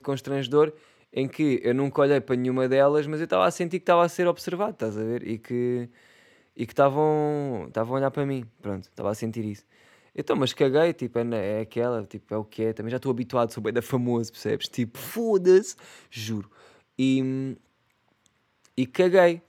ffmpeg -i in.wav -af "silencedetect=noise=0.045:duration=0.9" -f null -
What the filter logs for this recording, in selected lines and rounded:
silence_start: 17.52
silence_end: 18.78 | silence_duration: 1.26